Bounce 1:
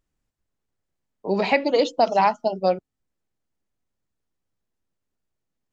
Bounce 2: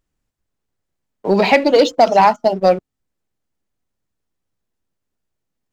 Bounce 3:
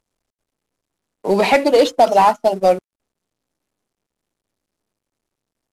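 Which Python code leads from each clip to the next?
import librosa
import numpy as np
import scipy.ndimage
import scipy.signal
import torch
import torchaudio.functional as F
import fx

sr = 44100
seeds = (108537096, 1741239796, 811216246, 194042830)

y1 = fx.leveller(x, sr, passes=1)
y1 = y1 * 10.0 ** (5.0 / 20.0)
y2 = fx.cvsd(y1, sr, bps=64000)
y2 = fx.bass_treble(y2, sr, bass_db=-5, treble_db=0)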